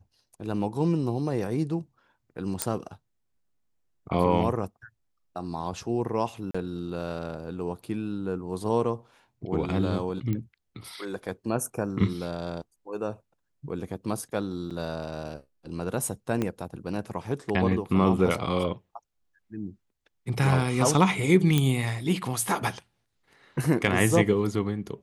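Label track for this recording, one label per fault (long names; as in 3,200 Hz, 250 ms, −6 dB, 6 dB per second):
2.620000	2.620000	click −7 dBFS
6.510000	6.540000	drop-out 35 ms
10.330000	10.330000	click −19 dBFS
14.700000	14.710000	drop-out 6.6 ms
16.420000	16.420000	click −15 dBFS
21.580000	21.580000	click −10 dBFS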